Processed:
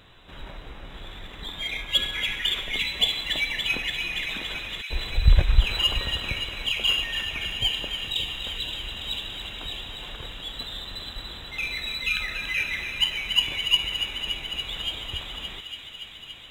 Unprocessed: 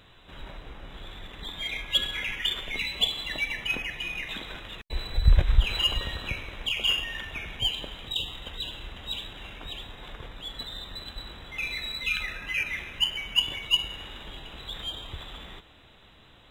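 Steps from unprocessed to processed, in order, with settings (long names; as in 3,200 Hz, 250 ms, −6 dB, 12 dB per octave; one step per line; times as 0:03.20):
delay with a high-pass on its return 285 ms, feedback 81%, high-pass 1,800 Hz, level −7.5 dB
level +2 dB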